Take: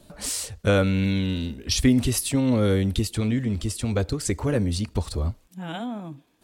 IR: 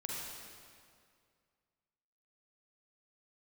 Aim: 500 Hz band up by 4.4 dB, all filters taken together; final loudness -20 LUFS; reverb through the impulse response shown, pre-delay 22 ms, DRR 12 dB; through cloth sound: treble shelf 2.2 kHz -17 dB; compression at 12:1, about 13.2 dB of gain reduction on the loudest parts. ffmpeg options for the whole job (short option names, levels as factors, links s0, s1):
-filter_complex "[0:a]equalizer=f=500:t=o:g=6,acompressor=threshold=0.0562:ratio=12,asplit=2[s0][s1];[1:a]atrim=start_sample=2205,adelay=22[s2];[s1][s2]afir=irnorm=-1:irlink=0,volume=0.211[s3];[s0][s3]amix=inputs=2:normalize=0,highshelf=f=2200:g=-17,volume=3.98"